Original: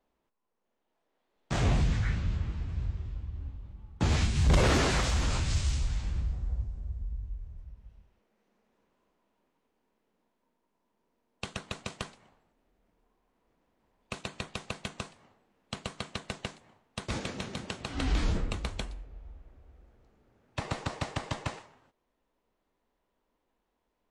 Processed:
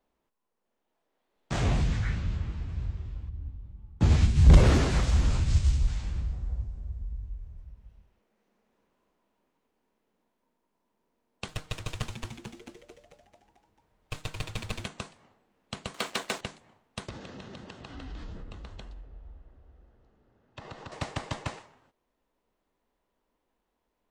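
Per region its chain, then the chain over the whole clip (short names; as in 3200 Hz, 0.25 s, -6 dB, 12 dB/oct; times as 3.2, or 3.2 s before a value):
3.29–5.88 low shelf 330 Hz +9.5 dB + upward expander, over -27 dBFS
11.48–14.85 minimum comb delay 6.5 ms + resonant low shelf 140 Hz +8 dB, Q 1.5 + frequency-shifting echo 0.221 s, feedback 59%, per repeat -120 Hz, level -4 dB
15.94–16.41 HPF 330 Hz + sample leveller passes 3
17.09–20.92 notch 2300 Hz, Q 7.4 + compressor 4:1, threshold -40 dBFS + air absorption 100 m
whole clip: dry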